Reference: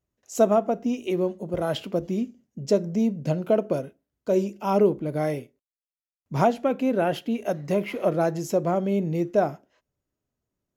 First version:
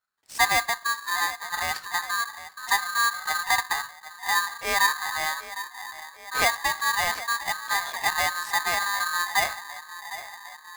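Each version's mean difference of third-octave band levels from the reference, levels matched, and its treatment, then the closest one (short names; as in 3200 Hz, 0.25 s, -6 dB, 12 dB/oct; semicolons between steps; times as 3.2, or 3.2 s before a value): 20.0 dB: notches 50/100/150/200/250/300/350 Hz; dynamic EQ 180 Hz, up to +3 dB, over -32 dBFS, Q 0.88; narrowing echo 0.757 s, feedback 73%, band-pass 460 Hz, level -13 dB; polarity switched at an audio rate 1400 Hz; gain -3 dB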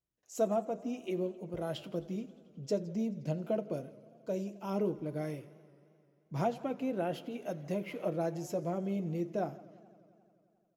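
2.5 dB: dynamic EQ 1200 Hz, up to -4 dB, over -34 dBFS, Q 0.99; flange 1.7 Hz, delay 5.7 ms, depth 1.1 ms, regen -45%; echo 0.161 s -24 dB; warbling echo 88 ms, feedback 80%, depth 131 cents, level -21.5 dB; gain -6.5 dB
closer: second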